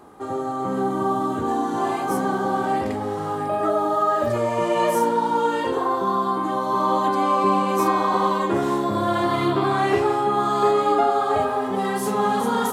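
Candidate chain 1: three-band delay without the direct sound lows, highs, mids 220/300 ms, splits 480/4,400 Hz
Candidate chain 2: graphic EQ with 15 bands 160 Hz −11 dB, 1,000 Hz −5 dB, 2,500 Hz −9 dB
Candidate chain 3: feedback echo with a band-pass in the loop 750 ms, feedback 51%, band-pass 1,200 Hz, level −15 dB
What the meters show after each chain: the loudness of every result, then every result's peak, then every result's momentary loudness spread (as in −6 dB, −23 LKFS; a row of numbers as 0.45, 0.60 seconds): −23.0, −24.5, −21.5 LKFS; −8.5, −9.5, −7.0 dBFS; 5, 5, 5 LU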